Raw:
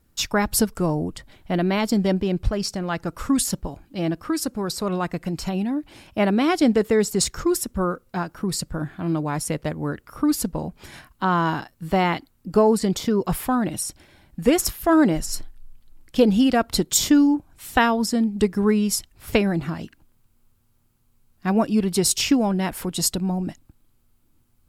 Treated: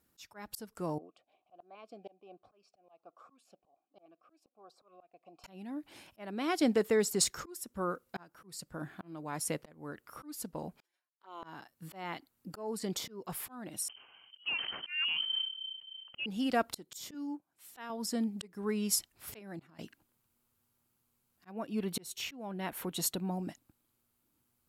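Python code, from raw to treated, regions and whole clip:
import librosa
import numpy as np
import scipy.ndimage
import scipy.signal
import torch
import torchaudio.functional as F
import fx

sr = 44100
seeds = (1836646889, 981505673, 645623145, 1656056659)

y = fx.chain(x, sr, fx.peak_eq(hz=340.0, db=5.5, octaves=1.5),
    fx.filter_lfo_notch(shape='saw_up', hz=1.3, low_hz=650.0, high_hz=3000.0, q=2.0),
    fx.vowel_filter(vowel='a'), at=(0.98, 5.44))
y = fx.chain(y, sr, fx.highpass(hz=340.0, slope=24),
    fx.env_flanger(rest_ms=7.5, full_db=-20.0),
    fx.upward_expand(threshold_db=-47.0, expansion=2.5), at=(10.8, 11.43))
y = fx.chain(y, sr, fx.freq_invert(carrier_hz=3100),
    fx.sustainer(db_per_s=100.0), at=(13.88, 16.26))
y = fx.chain(y, sr, fx.highpass(hz=150.0, slope=12),
    fx.upward_expand(threshold_db=-36.0, expansion=1.5), at=(17.14, 17.9))
y = fx.chain(y, sr, fx.highpass(hz=69.0, slope=12),
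    fx.level_steps(step_db=24), at=(19.39, 19.79))
y = fx.chain(y, sr, fx.peak_eq(hz=8100.0, db=-6.5, octaves=0.99),
    fx.notch(hz=5000.0, q=5.6), at=(21.51, 23.32))
y = fx.highpass(y, sr, hz=290.0, slope=6)
y = fx.peak_eq(y, sr, hz=13000.0, db=3.5, octaves=0.8)
y = fx.auto_swell(y, sr, attack_ms=495.0)
y = F.gain(torch.from_numpy(y), -7.0).numpy()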